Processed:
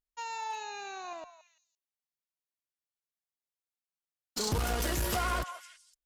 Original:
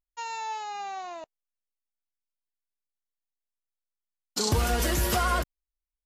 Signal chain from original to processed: 0.53–1.13 ripple EQ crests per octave 1.5, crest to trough 12 dB; delay with a stepping band-pass 0.17 s, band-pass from 990 Hz, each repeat 1.4 oct, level -10.5 dB; one-sided clip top -28 dBFS; gain -3.5 dB

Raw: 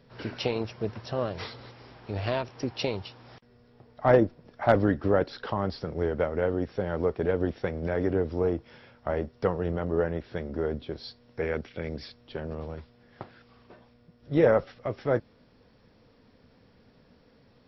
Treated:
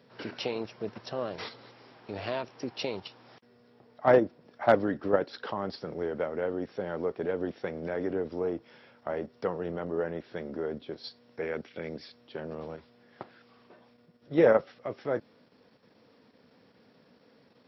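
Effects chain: HPF 190 Hz 12 dB/oct; in parallel at +1.5 dB: level quantiser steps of 21 dB; on the sum: gain -5.5 dB

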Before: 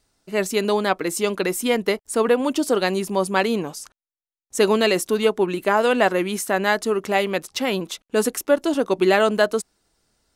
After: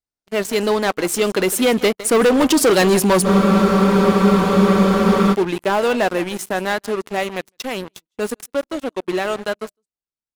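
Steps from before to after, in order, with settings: Doppler pass-by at 2.98, 8 m/s, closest 5.6 m; echo 0.158 s -18 dB; sample leveller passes 5; spectral freeze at 3.27, 2.05 s; gain -4 dB

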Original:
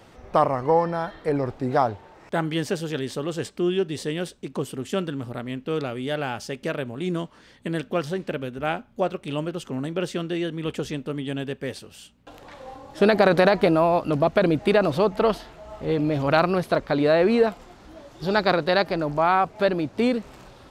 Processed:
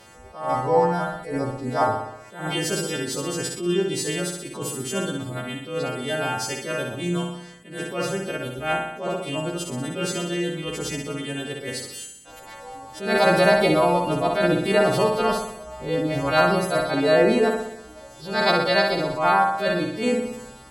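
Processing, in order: frequency quantiser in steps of 2 st; flutter echo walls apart 10.7 m, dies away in 0.85 s; attack slew limiter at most 120 dB/s

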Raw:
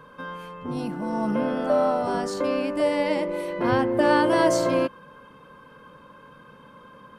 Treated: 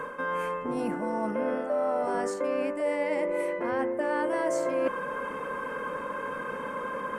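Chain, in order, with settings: graphic EQ 125/250/500/1000/2000/4000/8000 Hz -8/+4/+9/+4/+11/-9/+10 dB; reverse; compressor 6:1, threshold -35 dBFS, peak gain reduction 25.5 dB; reverse; gain +7 dB

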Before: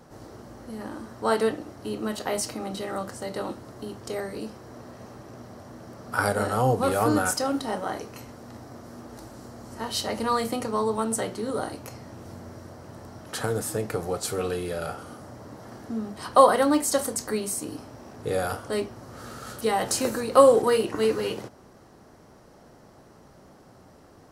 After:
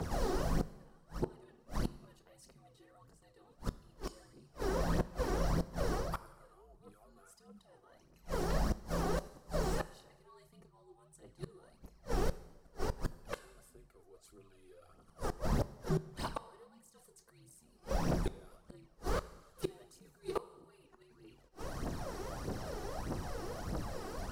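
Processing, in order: reverse; compressor 8:1, threshold -32 dBFS, peak gain reduction 21.5 dB; reverse; frequency shift -72 Hz; phaser 1.6 Hz, delay 2.8 ms, feedback 65%; flipped gate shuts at -29 dBFS, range -36 dB; on a send at -16 dB: reverb RT60 1.1 s, pre-delay 5 ms; on the sum: slew limiter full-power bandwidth 12 Hz; gain +8 dB

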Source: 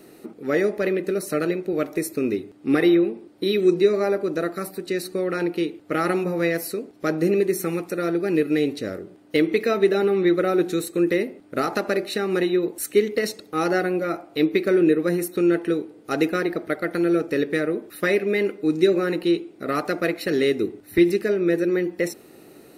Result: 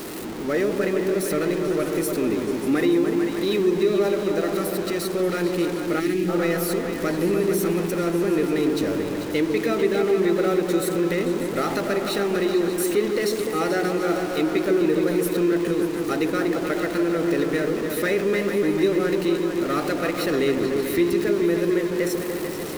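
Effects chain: zero-crossing step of -25.5 dBFS; repeats that get brighter 0.147 s, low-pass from 400 Hz, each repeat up 2 oct, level -3 dB; spectral gain 6–6.29, 410–1600 Hz -14 dB; in parallel at -2 dB: limiter -11 dBFS, peak gain reduction 6.5 dB; on the sum: gain -8.5 dB

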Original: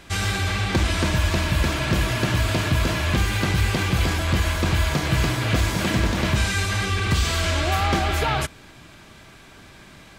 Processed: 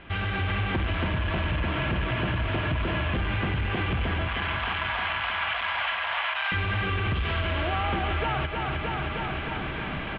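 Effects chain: soft clip -19 dBFS, distortion -13 dB; 4.28–6.52 steep high-pass 730 Hz 36 dB/oct; feedback echo 0.311 s, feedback 57%, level -10 dB; AGC gain up to 14.5 dB; elliptic low-pass 3100 Hz, stop band 60 dB; compressor 6:1, threshold -26 dBFS, peak gain reduction 16 dB

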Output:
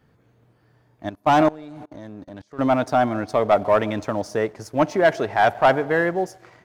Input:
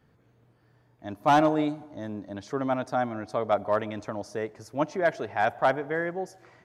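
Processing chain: 1.09–2.59 level quantiser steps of 23 dB; sample leveller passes 1; gain +5.5 dB

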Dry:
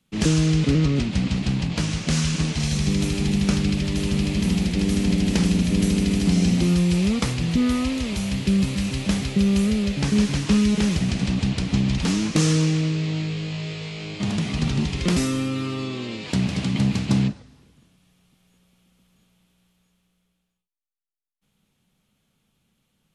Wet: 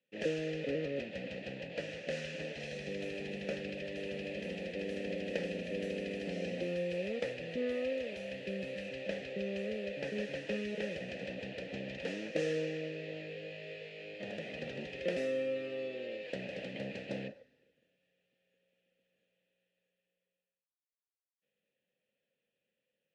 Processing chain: 8.89–9.71 LPF 8300 Hz 12 dB/oct; dynamic EQ 650 Hz, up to +5 dB, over -41 dBFS, Q 1.2; vowel filter e

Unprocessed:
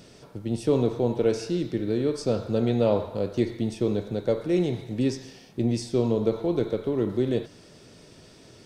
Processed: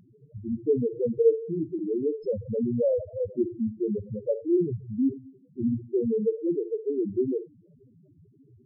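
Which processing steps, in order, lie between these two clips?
loudest bins only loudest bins 2; 1.13–1.79 doubler 13 ms -5 dB; gain +2.5 dB

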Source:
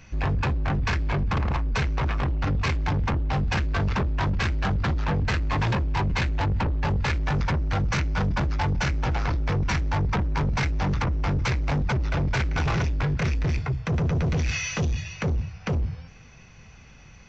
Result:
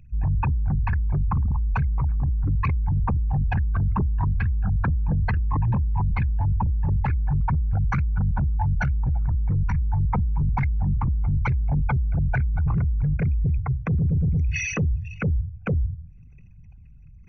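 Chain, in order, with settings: formant sharpening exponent 3; gain +2.5 dB

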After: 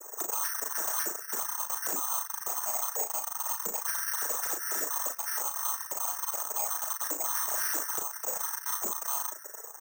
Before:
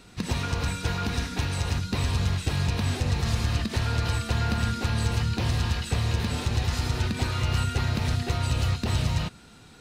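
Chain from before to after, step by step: sine-wave speech; elliptic band-pass 360–1200 Hz, stop band 40 dB; compressor 4:1, threshold -34 dBFS, peak gain reduction 14.5 dB; noise vocoder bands 12; soft clip -35 dBFS, distortion -10 dB; early reflections 37 ms -5.5 dB, 51 ms -16.5 dB; on a send at -19 dB: reverb RT60 0.35 s, pre-delay 3 ms; on the sum: careless resampling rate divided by 6×, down none, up zero stuff

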